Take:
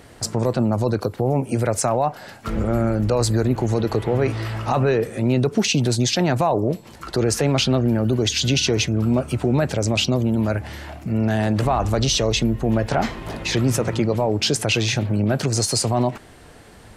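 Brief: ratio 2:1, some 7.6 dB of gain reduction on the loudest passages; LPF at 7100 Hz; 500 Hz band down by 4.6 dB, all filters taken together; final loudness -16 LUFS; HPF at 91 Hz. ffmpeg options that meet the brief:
-af "highpass=91,lowpass=7.1k,equalizer=f=500:t=o:g=-6,acompressor=threshold=-31dB:ratio=2,volume=13.5dB"

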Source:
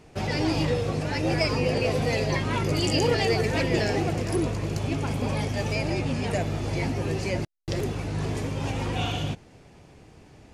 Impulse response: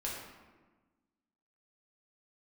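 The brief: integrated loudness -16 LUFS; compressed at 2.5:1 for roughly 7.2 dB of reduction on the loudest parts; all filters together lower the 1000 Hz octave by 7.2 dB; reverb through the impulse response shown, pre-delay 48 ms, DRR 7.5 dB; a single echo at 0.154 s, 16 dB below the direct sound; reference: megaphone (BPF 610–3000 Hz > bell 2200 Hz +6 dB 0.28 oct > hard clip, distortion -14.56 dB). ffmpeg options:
-filter_complex "[0:a]equalizer=f=1k:t=o:g=-8.5,acompressor=threshold=-31dB:ratio=2.5,aecho=1:1:154:0.158,asplit=2[a][b];[1:a]atrim=start_sample=2205,adelay=48[c];[b][c]afir=irnorm=-1:irlink=0,volume=-10dB[d];[a][d]amix=inputs=2:normalize=0,highpass=610,lowpass=3k,equalizer=f=2.2k:t=o:w=0.28:g=6,asoftclip=type=hard:threshold=-33.5dB,volume=23dB"

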